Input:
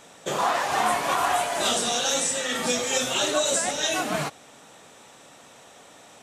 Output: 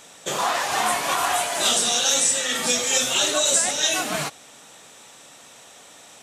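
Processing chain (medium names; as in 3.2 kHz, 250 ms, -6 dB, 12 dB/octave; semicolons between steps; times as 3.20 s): treble shelf 2.1 kHz +8.5 dB; trim -1.5 dB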